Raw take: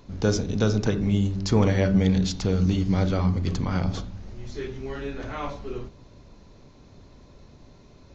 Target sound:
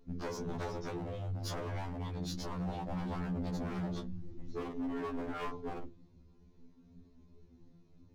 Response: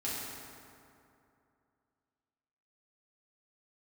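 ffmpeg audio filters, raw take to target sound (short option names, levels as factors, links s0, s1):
-af "afftdn=nr=14:nf=-39,equalizer=f=330:t=o:w=1.2:g=9,bandreject=f=590:w=12,acompressor=threshold=0.0708:ratio=8,flanger=delay=16:depth=2.8:speed=0.29,aeval=exprs='0.0355*(abs(mod(val(0)/0.0355+3,4)-2)-1)':c=same,afftfilt=real='re*2*eq(mod(b,4),0)':imag='im*2*eq(mod(b,4),0)':win_size=2048:overlap=0.75,volume=0.841"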